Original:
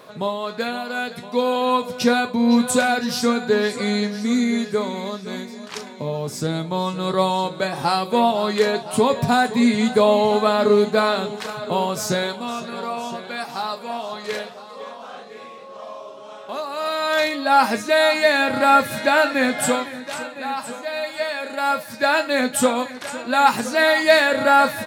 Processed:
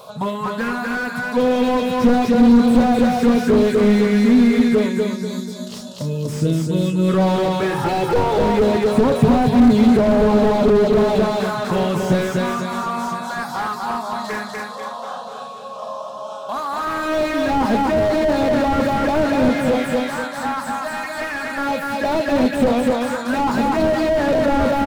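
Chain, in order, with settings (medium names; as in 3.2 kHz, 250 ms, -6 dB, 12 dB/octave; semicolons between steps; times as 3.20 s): touch-sensitive phaser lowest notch 300 Hz, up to 2.7 kHz, full sweep at -12 dBFS; 4.89–7.09 s: time-frequency box 670–2500 Hz -15 dB; in parallel at -1 dB: peak limiter -13 dBFS, peak gain reduction 9 dB; 7.61–8.38 s: on the sum: comb 2.3 ms, depth 100%; on a send: feedback delay 244 ms, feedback 36%, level -4 dB; on the sum: slew-rate limiter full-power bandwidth 85 Hz; trim +2 dB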